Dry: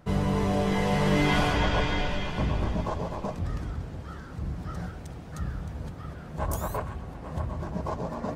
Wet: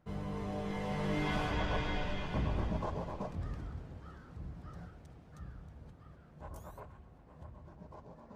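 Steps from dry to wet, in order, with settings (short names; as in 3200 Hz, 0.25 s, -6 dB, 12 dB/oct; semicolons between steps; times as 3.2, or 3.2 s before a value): Doppler pass-by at 2.61, 8 m/s, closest 9 m; high shelf 4600 Hz -6 dB; gain -6.5 dB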